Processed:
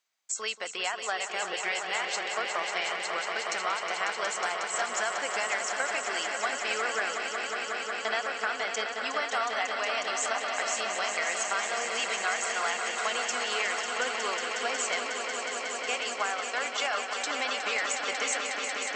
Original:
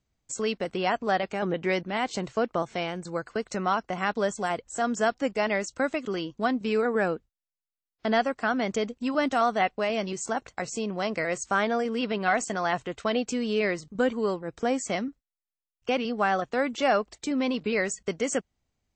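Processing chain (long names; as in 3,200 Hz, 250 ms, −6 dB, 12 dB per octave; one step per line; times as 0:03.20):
high-pass filter 1,100 Hz 12 dB per octave
downward compressor, threshold −33 dBFS, peak gain reduction 10.5 dB
echo that builds up and dies away 182 ms, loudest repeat 5, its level −8 dB
level +5 dB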